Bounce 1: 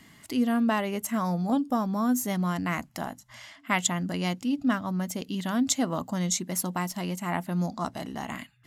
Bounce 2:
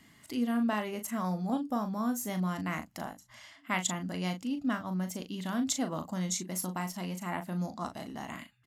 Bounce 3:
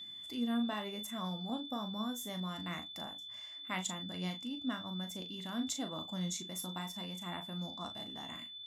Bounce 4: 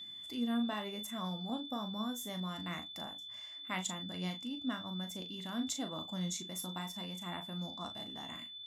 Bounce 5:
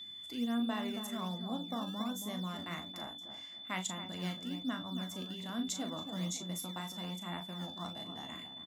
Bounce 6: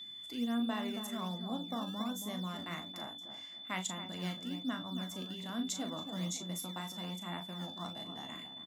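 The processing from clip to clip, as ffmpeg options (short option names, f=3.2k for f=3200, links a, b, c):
-filter_complex "[0:a]asplit=2[a][b];[b]adelay=38,volume=-8dB[c];[a][c]amix=inputs=2:normalize=0,volume=-6dB"
-af "aeval=exprs='val(0)+0.0126*sin(2*PI*3500*n/s)':c=same,flanger=delay=9.4:depth=3.6:regen=65:speed=1:shape=sinusoidal,volume=-3dB"
-af anull
-filter_complex "[0:a]asplit=2[a][b];[b]adelay=275,lowpass=f=890:p=1,volume=-6.5dB,asplit=2[c][d];[d]adelay=275,lowpass=f=890:p=1,volume=0.34,asplit=2[e][f];[f]adelay=275,lowpass=f=890:p=1,volume=0.34,asplit=2[g][h];[h]adelay=275,lowpass=f=890:p=1,volume=0.34[i];[a][c][e][g][i]amix=inputs=5:normalize=0,acrossover=split=210[j][k];[j]acrusher=samples=17:mix=1:aa=0.000001:lfo=1:lforange=27.2:lforate=1.2[l];[l][k]amix=inputs=2:normalize=0"
-af "highpass=99"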